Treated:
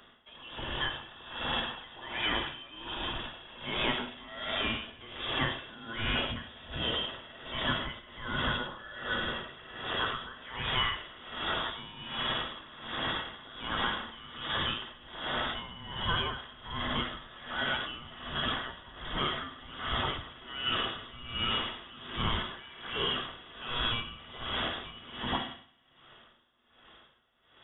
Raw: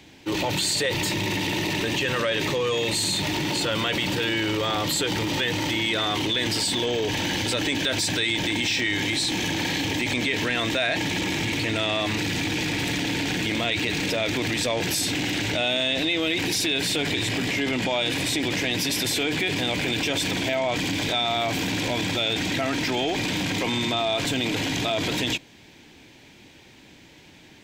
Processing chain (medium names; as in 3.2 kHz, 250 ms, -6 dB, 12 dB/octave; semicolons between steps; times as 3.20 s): bass shelf 490 Hz -9 dB; reverberation RT60 2.0 s, pre-delay 5 ms, DRR 1.5 dB; frequency inversion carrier 3.6 kHz; logarithmic tremolo 1.3 Hz, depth 19 dB; trim -4 dB